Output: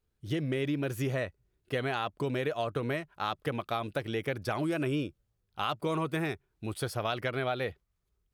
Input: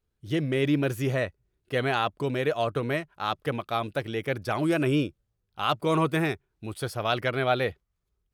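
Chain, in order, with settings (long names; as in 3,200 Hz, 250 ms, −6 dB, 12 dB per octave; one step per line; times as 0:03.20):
downward compressor, threshold −28 dBFS, peak gain reduction 9.5 dB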